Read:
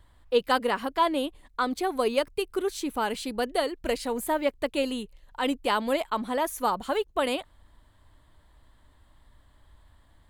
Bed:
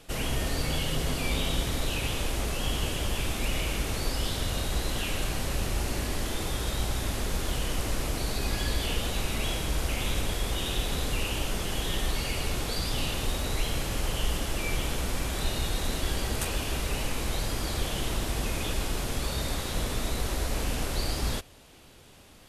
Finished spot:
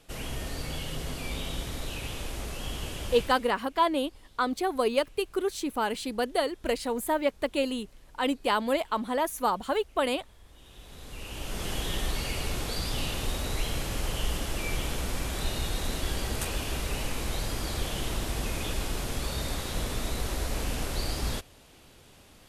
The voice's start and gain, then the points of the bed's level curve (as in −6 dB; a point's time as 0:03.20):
2.80 s, −0.5 dB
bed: 0:03.19 −6 dB
0:03.61 −29 dB
0:10.42 −29 dB
0:11.66 −1.5 dB